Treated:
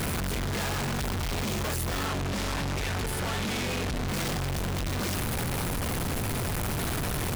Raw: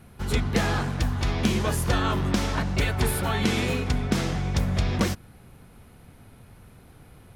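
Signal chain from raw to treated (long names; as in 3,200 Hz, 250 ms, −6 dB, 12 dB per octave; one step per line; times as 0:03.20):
sign of each sample alone
0:02.06–0:04.08: high-shelf EQ 12,000 Hz −10.5 dB
level −3.5 dB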